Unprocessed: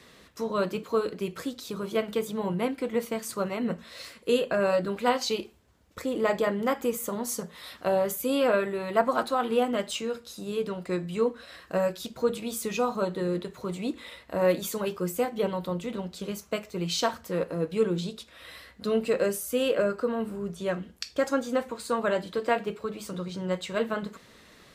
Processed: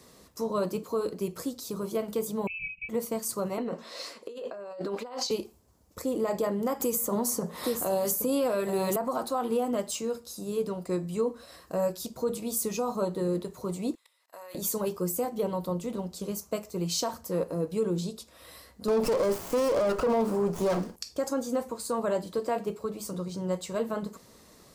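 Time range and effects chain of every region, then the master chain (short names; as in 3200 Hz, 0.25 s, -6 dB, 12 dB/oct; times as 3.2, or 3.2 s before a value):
2.47–2.89 inverted band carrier 2800 Hz + brick-wall FIR band-stop 190–2200 Hz
3.58–5.31 three-band isolator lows -22 dB, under 260 Hz, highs -16 dB, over 5900 Hz + negative-ratio compressor -36 dBFS
6.8–8.96 echo 0.822 s -11.5 dB + three-band squash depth 100%
13.95–14.55 HPF 1200 Hz + level quantiser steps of 22 dB
18.88–20.96 overdrive pedal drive 23 dB, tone 3400 Hz, clips at -13.5 dBFS + running maximum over 9 samples
whole clip: band shelf 2300 Hz -9 dB; limiter -19.5 dBFS; high shelf 7500 Hz +7.5 dB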